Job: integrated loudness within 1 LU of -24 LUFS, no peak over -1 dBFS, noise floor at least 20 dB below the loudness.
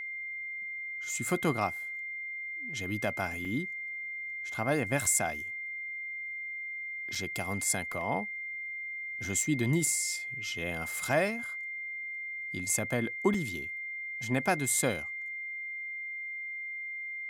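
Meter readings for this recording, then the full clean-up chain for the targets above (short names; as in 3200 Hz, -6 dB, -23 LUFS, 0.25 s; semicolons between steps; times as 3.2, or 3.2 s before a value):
dropouts 4; longest dropout 3.6 ms; steady tone 2100 Hz; tone level -36 dBFS; loudness -32.5 LUFS; peak -13.0 dBFS; loudness target -24.0 LUFS
-> interpolate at 3.45/7.15/7.92/13.34, 3.6 ms; notch 2100 Hz, Q 30; gain +8.5 dB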